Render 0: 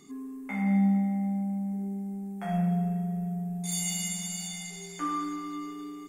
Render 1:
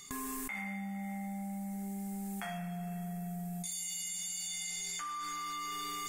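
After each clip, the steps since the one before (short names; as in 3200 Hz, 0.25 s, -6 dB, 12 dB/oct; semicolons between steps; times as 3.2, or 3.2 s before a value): gate with hold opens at -37 dBFS; passive tone stack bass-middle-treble 10-0-10; fast leveller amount 100%; gain -8 dB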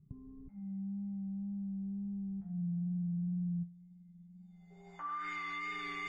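low-pass sweep 150 Hz -> 2300 Hz, 4.29–5.33; notch comb 240 Hz; wow and flutter 24 cents; gain +1 dB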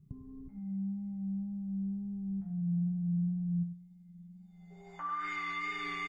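echo 98 ms -11.5 dB; gain +3 dB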